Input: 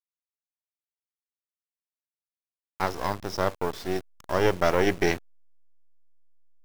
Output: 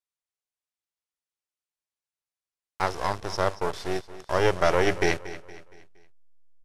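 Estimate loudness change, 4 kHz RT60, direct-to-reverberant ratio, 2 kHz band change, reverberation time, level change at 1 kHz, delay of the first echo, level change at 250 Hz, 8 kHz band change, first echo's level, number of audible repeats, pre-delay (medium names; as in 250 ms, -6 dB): +0.5 dB, no reverb, no reverb, +1.5 dB, no reverb, +1.5 dB, 233 ms, -2.5 dB, +1.5 dB, -15.5 dB, 3, no reverb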